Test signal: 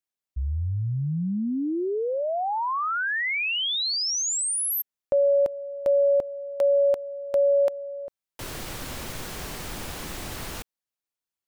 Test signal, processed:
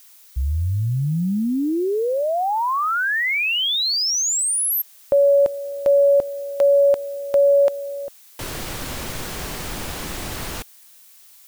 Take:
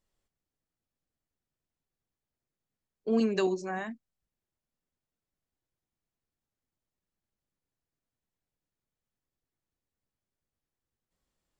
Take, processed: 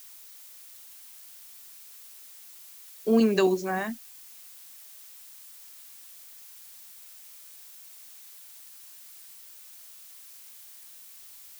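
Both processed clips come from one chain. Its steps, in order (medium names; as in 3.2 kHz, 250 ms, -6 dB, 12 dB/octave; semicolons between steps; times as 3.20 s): added noise blue -54 dBFS; trim +5.5 dB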